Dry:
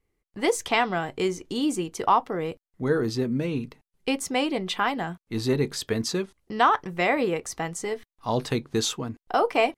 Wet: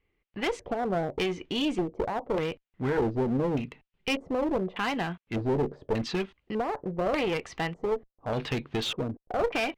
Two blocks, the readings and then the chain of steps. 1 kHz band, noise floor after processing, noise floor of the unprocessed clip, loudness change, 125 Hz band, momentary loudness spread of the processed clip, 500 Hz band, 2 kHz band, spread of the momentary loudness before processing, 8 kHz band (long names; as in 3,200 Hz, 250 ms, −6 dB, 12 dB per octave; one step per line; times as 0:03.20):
−8.0 dB, −84 dBFS, below −85 dBFS, −4.0 dB, −1.5 dB, 6 LU, −2.5 dB, −5.0 dB, 9 LU, −14.0 dB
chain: brickwall limiter −18 dBFS, peak gain reduction 10 dB
auto-filter low-pass square 0.84 Hz 570–2,800 Hz
asymmetric clip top −29.5 dBFS